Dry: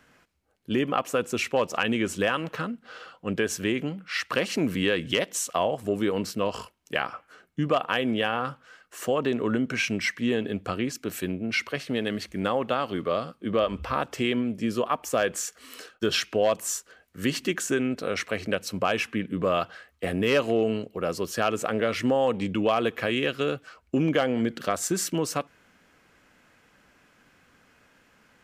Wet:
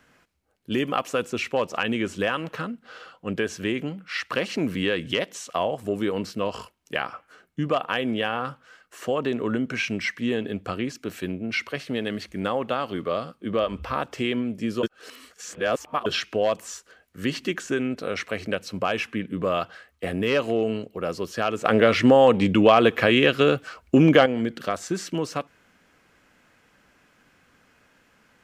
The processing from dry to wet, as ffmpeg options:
ffmpeg -i in.wav -filter_complex "[0:a]asettb=1/sr,asplit=3[link_01][link_02][link_03];[link_01]atrim=end=0.724[link_04];[link_02]atrim=start=0.72:end=1.3,asetpts=PTS-STARTPTS,afade=type=in:duration=0.004:curve=qsin,afade=type=out:start_time=0.576:duration=0.004:curve=qsin,highshelf=frequency=4200:gain=9.5[link_05];[link_03]atrim=start=1.296[link_06];[link_04][link_05]acrossfade=duration=0.004:curve1=hsin:curve2=qsin[link_07];[link_07][link_06]acrossfade=duration=0.004:curve1=qsin:curve2=hsin,asplit=5[link_08][link_09][link_10][link_11][link_12];[link_08]atrim=end=14.832[link_13];[link_09]atrim=start=14.828:end=16.062,asetpts=PTS-STARTPTS,areverse[link_14];[link_10]atrim=start=16.058:end=21.652[link_15];[link_11]atrim=start=21.648:end=24.262,asetpts=PTS-STARTPTS,volume=8dB[link_16];[link_12]atrim=start=24.258[link_17];[link_13][link_14]acrossfade=duration=0.004:curve1=hsin:curve2=hsin[link_18];[link_18][link_15]acrossfade=duration=0.004:curve1=hsin:curve2=hsin[link_19];[link_19][link_16]acrossfade=duration=0.004:curve1=hsin:curve2=hsin[link_20];[link_20][link_17]acrossfade=duration=0.004:curve1=hsin:curve2=hsin,acrossover=split=5600[link_21][link_22];[link_22]acompressor=threshold=-48dB:ratio=4:attack=1:release=60[link_23];[link_21][link_23]amix=inputs=2:normalize=0" out.wav

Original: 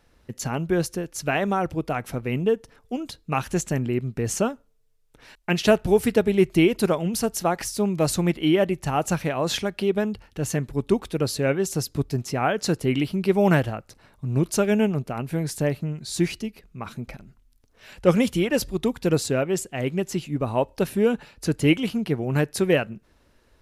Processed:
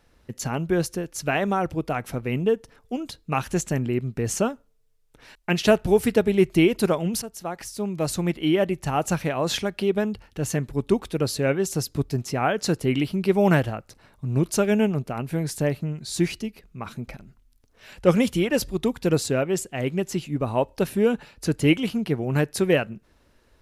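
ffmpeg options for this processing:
ffmpeg -i in.wav -filter_complex "[0:a]asplit=2[link_01][link_02];[link_01]atrim=end=7.22,asetpts=PTS-STARTPTS,afade=type=out:start_time=7.216:duration=0.004:curve=hsin:silence=0.223872[link_03];[link_02]atrim=start=7.22,asetpts=PTS-STARTPTS,afade=type=in:duration=2.16:curve=qsin:silence=0.223872[link_04];[link_03][link_04]concat=n=2:v=0:a=1" out.wav

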